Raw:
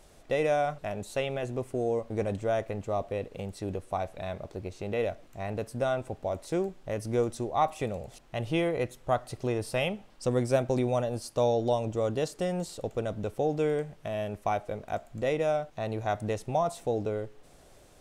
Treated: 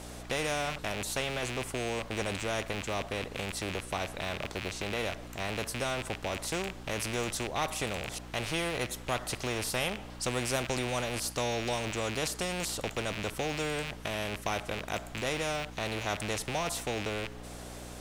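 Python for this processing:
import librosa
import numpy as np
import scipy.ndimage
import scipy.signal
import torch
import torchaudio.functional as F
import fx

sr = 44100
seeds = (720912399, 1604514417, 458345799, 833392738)

y = fx.rattle_buzz(x, sr, strikes_db=-44.0, level_db=-33.0)
y = fx.add_hum(y, sr, base_hz=60, snr_db=19)
y = fx.spectral_comp(y, sr, ratio=2.0)
y = y * 10.0 ** (-3.5 / 20.0)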